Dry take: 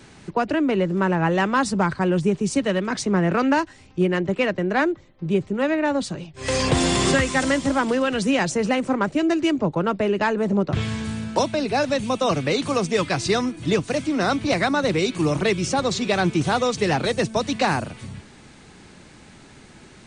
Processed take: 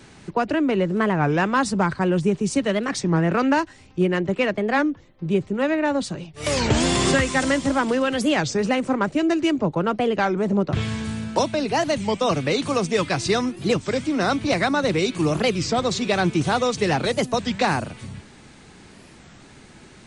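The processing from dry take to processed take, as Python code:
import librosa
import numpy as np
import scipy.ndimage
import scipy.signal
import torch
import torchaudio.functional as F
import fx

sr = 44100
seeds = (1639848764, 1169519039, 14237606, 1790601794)

y = fx.record_warp(x, sr, rpm=33.33, depth_cents=250.0)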